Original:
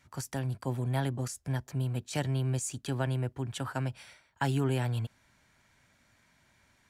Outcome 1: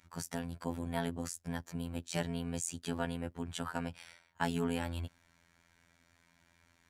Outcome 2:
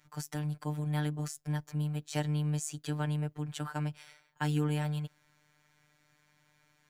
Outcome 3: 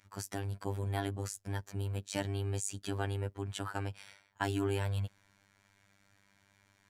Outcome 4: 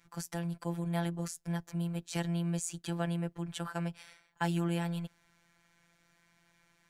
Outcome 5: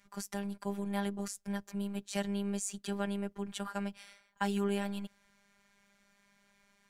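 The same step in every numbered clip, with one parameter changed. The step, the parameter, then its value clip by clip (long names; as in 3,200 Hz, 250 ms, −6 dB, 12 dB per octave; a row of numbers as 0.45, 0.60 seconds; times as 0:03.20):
phases set to zero, frequency: 85, 150, 99, 170, 200 Hertz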